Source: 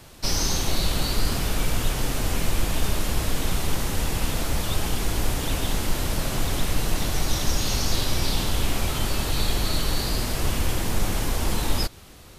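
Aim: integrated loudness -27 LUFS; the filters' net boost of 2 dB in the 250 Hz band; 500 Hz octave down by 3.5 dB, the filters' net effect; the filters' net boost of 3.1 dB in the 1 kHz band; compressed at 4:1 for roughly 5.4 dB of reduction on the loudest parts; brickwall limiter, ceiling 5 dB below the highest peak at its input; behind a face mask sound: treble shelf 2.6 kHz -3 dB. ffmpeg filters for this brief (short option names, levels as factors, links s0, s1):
-af "equalizer=f=250:t=o:g=4.5,equalizer=f=500:t=o:g=-8,equalizer=f=1000:t=o:g=6.5,acompressor=threshold=0.0794:ratio=4,alimiter=limit=0.126:level=0:latency=1,highshelf=f=2600:g=-3,volume=1.68"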